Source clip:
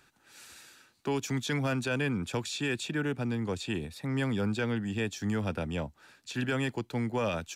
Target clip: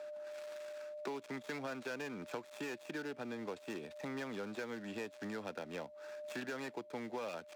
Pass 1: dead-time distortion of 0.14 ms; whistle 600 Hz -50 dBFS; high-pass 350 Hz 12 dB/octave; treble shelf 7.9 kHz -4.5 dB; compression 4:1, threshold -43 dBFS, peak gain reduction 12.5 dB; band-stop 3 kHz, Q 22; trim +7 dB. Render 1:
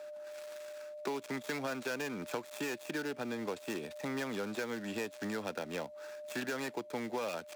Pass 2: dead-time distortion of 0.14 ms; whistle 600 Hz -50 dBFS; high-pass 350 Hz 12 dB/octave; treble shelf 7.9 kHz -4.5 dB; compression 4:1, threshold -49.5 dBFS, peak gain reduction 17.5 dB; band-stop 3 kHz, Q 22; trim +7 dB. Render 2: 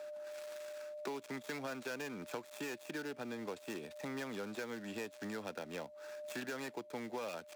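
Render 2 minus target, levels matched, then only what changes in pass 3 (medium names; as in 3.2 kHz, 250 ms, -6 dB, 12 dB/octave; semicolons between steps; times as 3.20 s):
8 kHz band +4.0 dB
change: treble shelf 7.9 kHz -15 dB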